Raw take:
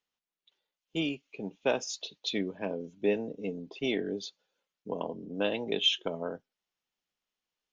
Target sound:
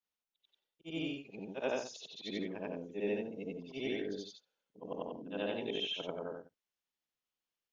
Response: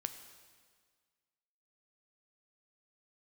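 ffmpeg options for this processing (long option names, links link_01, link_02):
-filter_complex "[0:a]afftfilt=real='re':imag='-im':win_size=8192:overlap=0.75,acrossover=split=2900[link_01][link_02];[link_02]acompressor=threshold=-46dB:ratio=4:attack=1:release=60[link_03];[link_01][link_03]amix=inputs=2:normalize=0,volume=-1.5dB"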